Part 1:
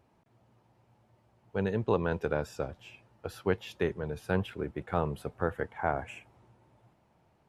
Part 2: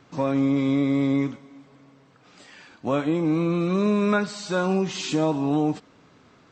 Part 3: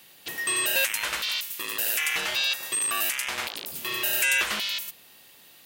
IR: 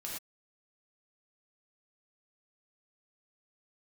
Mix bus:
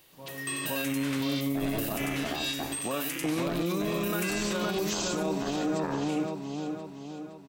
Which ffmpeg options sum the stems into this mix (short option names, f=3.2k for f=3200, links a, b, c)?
-filter_complex "[0:a]aeval=exprs='val(0)*sin(2*PI*220*n/s)':c=same,volume=0.5dB,asplit=3[a][b][c];[b]volume=-5.5dB[d];[1:a]volume=-1dB,asplit=3[e][f][g];[f]volume=-19.5dB[h];[g]volume=-6dB[i];[2:a]volume=-9.5dB,asplit=3[j][k][l];[k]volume=-7dB[m];[l]volume=-17.5dB[n];[c]apad=whole_len=287268[o];[e][o]sidechaingate=range=-33dB:threshold=-60dB:ratio=16:detection=peak[p];[a][p]amix=inputs=2:normalize=0,bass=f=250:g=-6,treble=f=4k:g=14,alimiter=limit=-18.5dB:level=0:latency=1:release=414,volume=0dB[q];[3:a]atrim=start_sample=2205[r];[d][h][m]amix=inputs=3:normalize=0[s];[s][r]afir=irnorm=-1:irlink=0[t];[i][n]amix=inputs=2:normalize=0,aecho=0:1:515|1030|1545|2060|2575|3090|3605:1|0.5|0.25|0.125|0.0625|0.0312|0.0156[u];[j][q][t][u]amix=inputs=4:normalize=0,alimiter=limit=-21dB:level=0:latency=1:release=45"